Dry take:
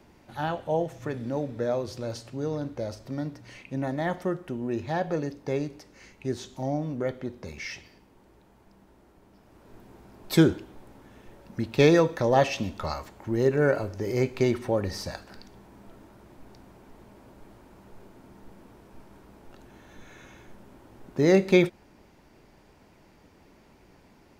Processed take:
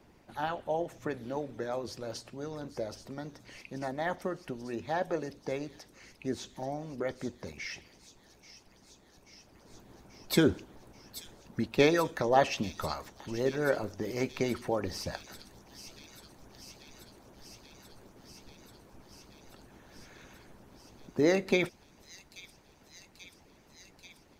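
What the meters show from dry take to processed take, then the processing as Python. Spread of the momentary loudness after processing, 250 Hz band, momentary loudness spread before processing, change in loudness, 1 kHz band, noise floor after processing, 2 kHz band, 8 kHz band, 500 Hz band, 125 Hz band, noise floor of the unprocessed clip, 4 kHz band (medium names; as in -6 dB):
25 LU, -6.5 dB, 16 LU, -5.5 dB, -2.5 dB, -61 dBFS, -3.0 dB, -1.0 dB, -6.0 dB, -9.5 dB, -58 dBFS, -1.5 dB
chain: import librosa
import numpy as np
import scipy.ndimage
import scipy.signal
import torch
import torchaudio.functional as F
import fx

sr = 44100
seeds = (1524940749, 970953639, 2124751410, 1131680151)

y = fx.echo_wet_highpass(x, sr, ms=835, feedback_pct=80, hz=4500.0, wet_db=-7.5)
y = fx.hpss(y, sr, part='harmonic', gain_db=-12)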